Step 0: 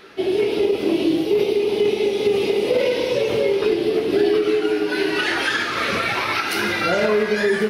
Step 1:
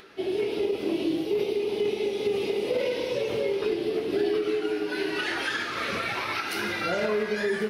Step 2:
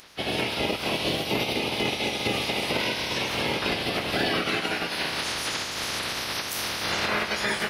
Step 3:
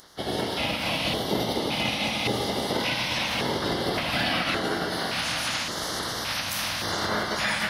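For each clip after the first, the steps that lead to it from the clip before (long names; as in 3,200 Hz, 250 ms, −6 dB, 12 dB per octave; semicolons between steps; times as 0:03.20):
upward compression, threshold −39 dBFS; level −8 dB
ceiling on every frequency bin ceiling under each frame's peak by 26 dB
convolution reverb RT60 4.7 s, pre-delay 69 ms, DRR 3 dB; auto-filter notch square 0.88 Hz 400–2,500 Hz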